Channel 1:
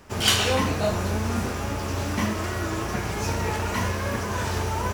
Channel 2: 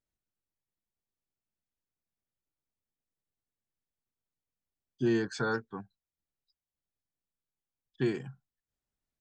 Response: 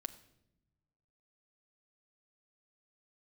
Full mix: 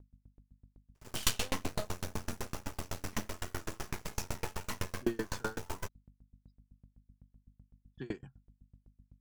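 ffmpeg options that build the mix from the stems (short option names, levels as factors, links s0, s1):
-filter_complex "[0:a]highshelf=f=5600:g=9.5,aeval=exprs='max(val(0),0)':c=same,adelay=950,volume=0.562,asplit=2[s0][s1];[s1]volume=0.531[s2];[1:a]volume=1.12,asplit=2[s3][s4];[s4]apad=whole_len=259491[s5];[s0][s5]sidechaincompress=threshold=0.0224:ratio=8:attack=16:release=209[s6];[2:a]atrim=start_sample=2205[s7];[s2][s7]afir=irnorm=-1:irlink=0[s8];[s6][s3][s8]amix=inputs=3:normalize=0,aeval=exprs='val(0)+0.00282*(sin(2*PI*50*n/s)+sin(2*PI*2*50*n/s)/2+sin(2*PI*3*50*n/s)/3+sin(2*PI*4*50*n/s)/4+sin(2*PI*5*50*n/s)/5)':c=same,aeval=exprs='val(0)*pow(10,-33*if(lt(mod(7.9*n/s,1),2*abs(7.9)/1000),1-mod(7.9*n/s,1)/(2*abs(7.9)/1000),(mod(7.9*n/s,1)-2*abs(7.9)/1000)/(1-2*abs(7.9)/1000))/20)':c=same"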